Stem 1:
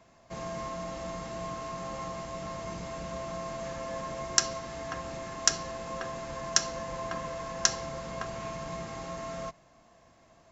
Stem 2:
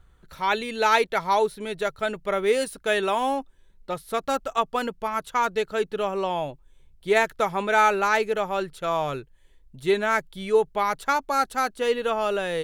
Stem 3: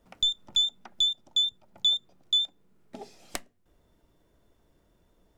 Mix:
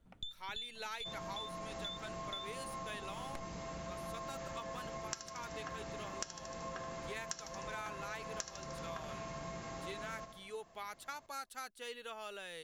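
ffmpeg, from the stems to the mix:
ffmpeg -i stem1.wav -i stem2.wav -i stem3.wav -filter_complex "[0:a]adelay=750,volume=-4.5dB,asplit=2[link_01][link_02];[link_02]volume=-10.5dB[link_03];[1:a]tiltshelf=frequency=1400:gain=-7.5,volume=-18dB[link_04];[2:a]bass=frequency=250:gain=11,treble=frequency=4000:gain=-10,volume=-11dB[link_05];[link_03]aecho=0:1:76|152|228|304|380|456|532|608:1|0.52|0.27|0.141|0.0731|0.038|0.0198|0.0103[link_06];[link_01][link_04][link_05][link_06]amix=inputs=4:normalize=0,acompressor=threshold=-40dB:ratio=6" out.wav

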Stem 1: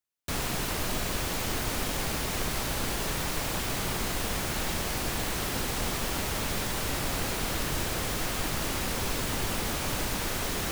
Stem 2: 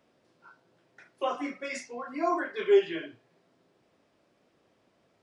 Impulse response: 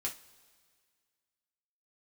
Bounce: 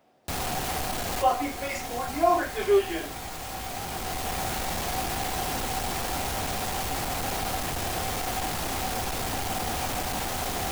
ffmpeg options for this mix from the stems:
-filter_complex "[0:a]volume=35dB,asoftclip=hard,volume=-35dB,volume=2.5dB,asplit=2[link_01][link_02];[link_02]volume=-6dB[link_03];[1:a]asoftclip=type=tanh:threshold=-16dB,volume=2dB,asplit=2[link_04][link_05];[link_05]apad=whole_len=472716[link_06];[link_01][link_06]sidechaincompress=threshold=-44dB:ratio=8:attack=16:release=914[link_07];[2:a]atrim=start_sample=2205[link_08];[link_03][link_08]afir=irnorm=-1:irlink=0[link_09];[link_07][link_04][link_09]amix=inputs=3:normalize=0,equalizer=frequency=760:width_type=o:width=0.37:gain=11.5"

